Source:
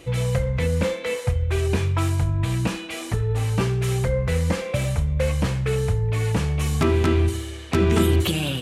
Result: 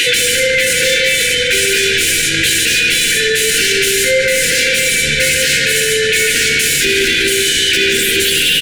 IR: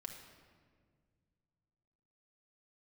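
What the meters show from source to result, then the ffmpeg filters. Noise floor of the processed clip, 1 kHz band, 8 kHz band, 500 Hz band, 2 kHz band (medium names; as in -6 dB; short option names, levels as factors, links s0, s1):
-14 dBFS, -1.0 dB, +23.5 dB, +8.5 dB, +22.0 dB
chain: -filter_complex "[0:a]aderivative,asplit=2[s0][s1];[s1]adelay=13,volume=0.708[s2];[s0][s2]amix=inputs=2:normalize=0,acrossover=split=300|4600[s3][s4][s5];[s4]acompressor=mode=upward:threshold=0.00501:ratio=2.5[s6];[s3][s6][s5]amix=inputs=3:normalize=0,asplit=2[s7][s8];[s8]highpass=f=720:p=1,volume=28.2,asoftclip=type=tanh:threshold=0.15[s9];[s7][s9]amix=inputs=2:normalize=0,lowpass=f=2600:p=1,volume=0.501,asplit=2[s10][s11];[1:a]atrim=start_sample=2205,lowpass=4800,adelay=148[s12];[s11][s12]afir=irnorm=-1:irlink=0,volume=1.19[s13];[s10][s13]amix=inputs=2:normalize=0,afftfilt=real='re*(1-between(b*sr/4096,530,1400))':imag='im*(1-between(b*sr/4096,530,1400))':win_size=4096:overlap=0.75,alimiter=level_in=23.7:limit=0.891:release=50:level=0:latency=1,volume=0.631"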